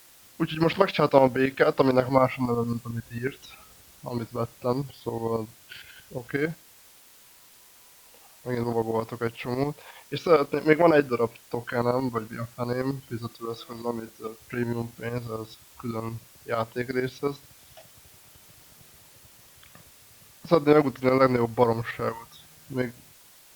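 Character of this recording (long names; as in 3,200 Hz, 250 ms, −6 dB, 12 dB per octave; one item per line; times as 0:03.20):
tremolo saw up 11 Hz, depth 70%
a quantiser's noise floor 10 bits, dither triangular
Opus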